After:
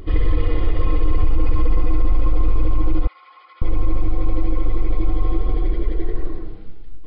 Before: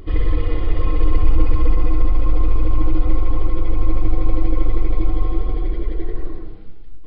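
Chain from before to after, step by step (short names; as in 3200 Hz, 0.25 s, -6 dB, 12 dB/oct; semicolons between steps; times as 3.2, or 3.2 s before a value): limiter -8.5 dBFS, peak gain reduction 6.5 dB; 3.07–3.62 ladder high-pass 990 Hz, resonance 25%; gain +1.5 dB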